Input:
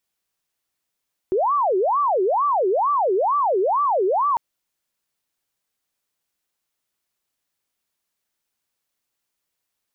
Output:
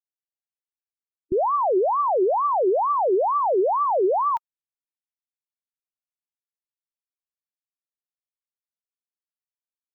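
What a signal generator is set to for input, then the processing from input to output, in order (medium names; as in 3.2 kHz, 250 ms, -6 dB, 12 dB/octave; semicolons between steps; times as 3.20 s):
siren wail 366–1170 Hz 2.2 per s sine -16.5 dBFS 3.05 s
expander on every frequency bin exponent 3; bass shelf 340 Hz +7.5 dB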